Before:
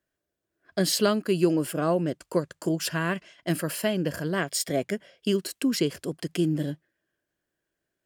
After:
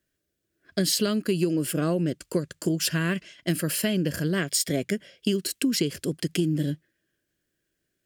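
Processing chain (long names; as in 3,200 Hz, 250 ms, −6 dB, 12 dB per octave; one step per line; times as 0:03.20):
parametric band 860 Hz −13 dB 1.3 octaves
downward compressor, threshold −27 dBFS, peak gain reduction 8.5 dB
level +6.5 dB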